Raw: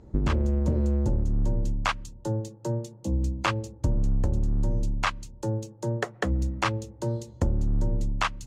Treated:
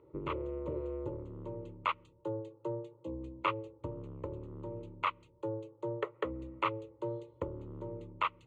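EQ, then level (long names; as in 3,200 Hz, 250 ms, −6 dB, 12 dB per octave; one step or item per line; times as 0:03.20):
band-pass filter 200–2,400 Hz
phaser with its sweep stopped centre 1,100 Hz, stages 8
−2.5 dB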